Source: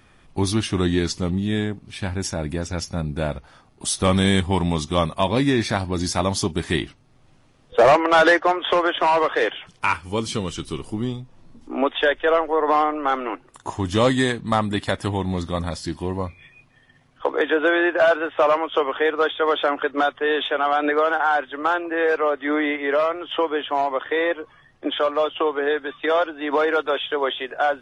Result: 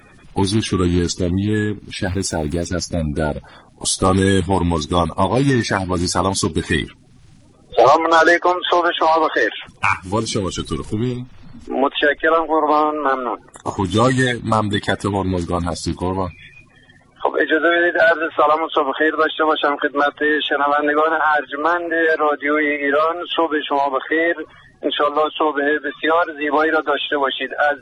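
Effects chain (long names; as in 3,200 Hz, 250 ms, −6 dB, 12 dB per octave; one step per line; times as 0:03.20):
spectral magnitudes quantised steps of 30 dB
in parallel at +1 dB: downward compressor, threshold −27 dBFS, peak gain reduction 15 dB
0:02.07–0:02.65: on the sum: centre clipping without the shift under −43 dBFS
level +1.5 dB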